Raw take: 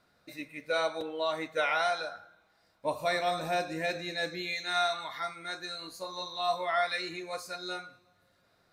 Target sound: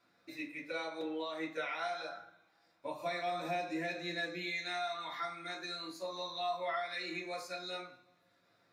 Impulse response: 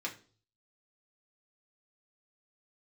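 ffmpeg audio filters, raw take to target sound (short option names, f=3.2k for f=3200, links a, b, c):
-filter_complex "[0:a]acompressor=threshold=-33dB:ratio=5[a];[1:a]atrim=start_sample=2205[b];[a][b]afir=irnorm=-1:irlink=0,volume=-3.5dB"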